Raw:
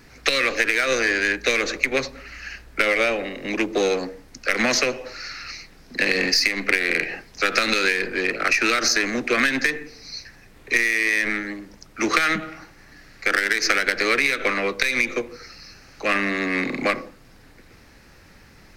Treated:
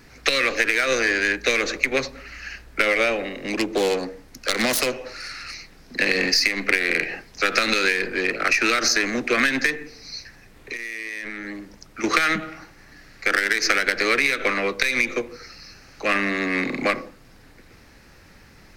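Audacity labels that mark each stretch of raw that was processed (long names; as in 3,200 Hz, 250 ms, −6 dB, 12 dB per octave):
3.410000	5.540000	phase distortion by the signal itself depth 0.18 ms
9.740000	12.040000	downward compressor, threshold −28 dBFS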